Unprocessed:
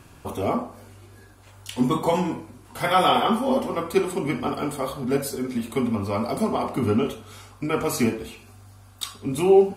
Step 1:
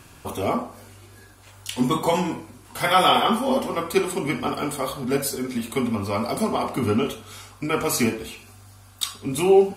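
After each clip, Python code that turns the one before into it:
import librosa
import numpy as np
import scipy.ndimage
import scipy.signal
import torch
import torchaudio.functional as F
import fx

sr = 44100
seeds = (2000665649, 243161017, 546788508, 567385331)

y = fx.tilt_shelf(x, sr, db=-3.0, hz=1400.0)
y = y * 10.0 ** (2.5 / 20.0)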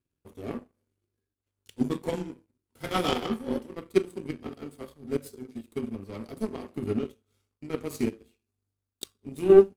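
y = fx.power_curve(x, sr, exponent=2.0)
y = fx.low_shelf_res(y, sr, hz=550.0, db=9.0, q=1.5)
y = y * 10.0 ** (-4.5 / 20.0)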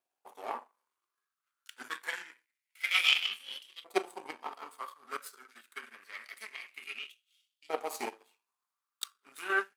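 y = fx.filter_lfo_highpass(x, sr, shape='saw_up', hz=0.26, low_hz=710.0, high_hz=3400.0, q=5.6)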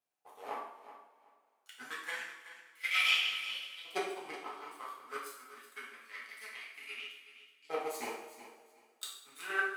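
y = fx.echo_feedback(x, sr, ms=375, feedback_pct=21, wet_db=-13.5)
y = fx.rev_double_slope(y, sr, seeds[0], early_s=0.61, late_s=2.5, knee_db=-19, drr_db=-4.5)
y = y * 10.0 ** (-7.0 / 20.0)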